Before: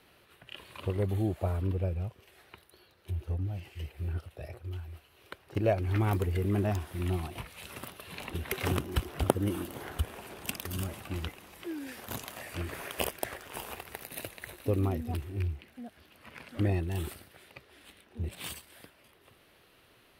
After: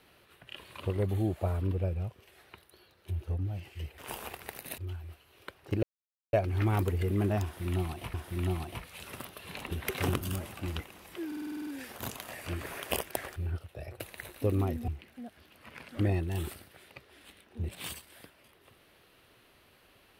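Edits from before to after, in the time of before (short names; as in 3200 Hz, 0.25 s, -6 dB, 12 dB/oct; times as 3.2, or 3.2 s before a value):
3.98–4.62 swap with 13.44–14.24
5.67 insert silence 0.50 s
6.77–7.48 loop, 2 plays
8.84–10.69 cut
11.75 stutter 0.05 s, 9 plays
15.12–15.48 cut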